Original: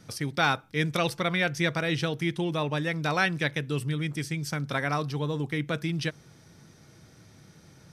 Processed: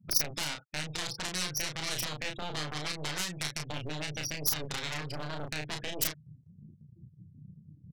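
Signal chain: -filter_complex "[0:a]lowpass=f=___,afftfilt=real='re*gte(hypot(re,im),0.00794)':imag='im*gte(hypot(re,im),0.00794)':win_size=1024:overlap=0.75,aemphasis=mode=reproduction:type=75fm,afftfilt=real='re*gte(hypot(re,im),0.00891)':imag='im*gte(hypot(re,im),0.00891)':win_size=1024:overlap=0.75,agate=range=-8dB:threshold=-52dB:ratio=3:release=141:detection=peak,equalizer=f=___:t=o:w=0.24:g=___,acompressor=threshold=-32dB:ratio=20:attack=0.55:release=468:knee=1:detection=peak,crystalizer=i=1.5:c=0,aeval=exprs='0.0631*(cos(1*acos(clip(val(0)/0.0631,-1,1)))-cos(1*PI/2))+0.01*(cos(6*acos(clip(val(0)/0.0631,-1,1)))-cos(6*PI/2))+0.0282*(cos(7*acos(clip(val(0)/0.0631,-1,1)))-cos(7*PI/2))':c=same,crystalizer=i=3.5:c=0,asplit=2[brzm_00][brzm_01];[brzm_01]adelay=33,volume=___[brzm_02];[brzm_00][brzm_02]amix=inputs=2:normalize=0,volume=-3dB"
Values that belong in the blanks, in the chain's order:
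8000, 5700, 15, -4.5dB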